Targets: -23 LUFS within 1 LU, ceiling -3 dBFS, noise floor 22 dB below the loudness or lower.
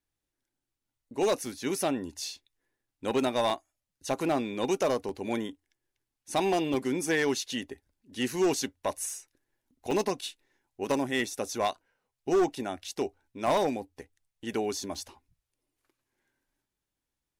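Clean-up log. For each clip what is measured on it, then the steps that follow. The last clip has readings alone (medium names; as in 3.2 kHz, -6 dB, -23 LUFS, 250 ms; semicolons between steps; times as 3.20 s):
clipped samples 0.9%; clipping level -20.0 dBFS; dropouts 8; longest dropout 1.5 ms; loudness -30.5 LUFS; peak level -20.0 dBFS; loudness target -23.0 LUFS
-> clip repair -20 dBFS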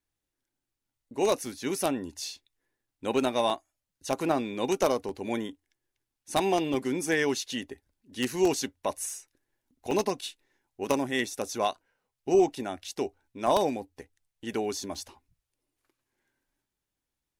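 clipped samples 0.0%; dropouts 8; longest dropout 1.5 ms
-> interpolate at 1.46/3.50/5.09/6.74/9.10/9.91/13.47/14.95 s, 1.5 ms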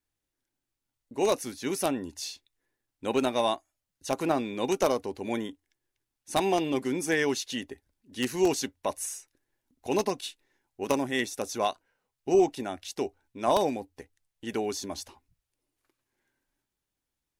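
dropouts 0; loudness -29.5 LUFS; peak level -11.0 dBFS; loudness target -23.0 LUFS
-> trim +6.5 dB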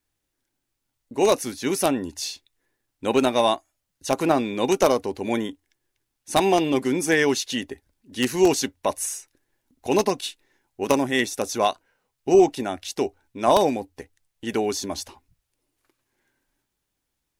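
loudness -23.0 LUFS; peak level -4.5 dBFS; noise floor -80 dBFS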